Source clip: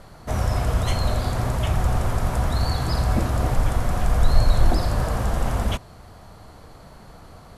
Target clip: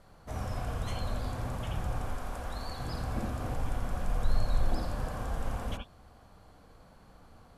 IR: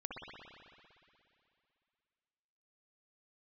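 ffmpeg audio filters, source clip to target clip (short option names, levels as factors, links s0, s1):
-filter_complex "[0:a]asettb=1/sr,asplit=3[s0][s1][s2];[s0]atrim=end=2.084[s3];[s1]atrim=start=2.08:end=2.79,asetpts=PTS-STARTPTS,afade=t=in:d=0.004:c=qsin,afade=t=out:st=0.706:d=0.004:c=qsin,equalizer=f=120:w=0.72:g=-10[s4];[s2]atrim=start=2.786[s5];[s3][s4]acrossfade=d=0.004:c1=hsin:c2=qsin[s6];[s6][s5]acrossfade=d=0.004:c1=qsin:c2=hsin[s7];[1:a]atrim=start_sample=2205,atrim=end_sample=4410[s8];[s7][s8]afir=irnorm=-1:irlink=0,volume=0.376"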